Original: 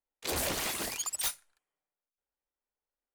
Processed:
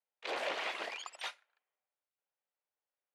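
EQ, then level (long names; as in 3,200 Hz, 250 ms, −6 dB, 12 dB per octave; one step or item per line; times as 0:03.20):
Chebyshev band-pass filter 540–2,800 Hz, order 2
0.0 dB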